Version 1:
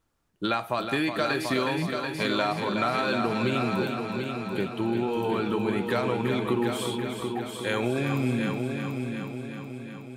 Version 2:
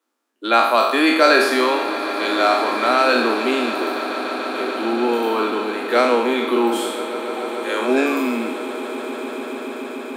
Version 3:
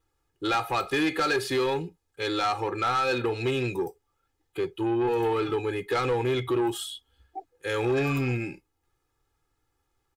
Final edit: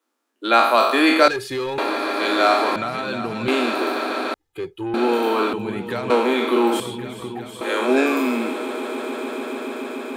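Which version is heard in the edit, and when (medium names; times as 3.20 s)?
2
1.28–1.78 s: from 3
2.76–3.48 s: from 1
4.34–4.94 s: from 3
5.53–6.10 s: from 1
6.80–7.61 s: from 1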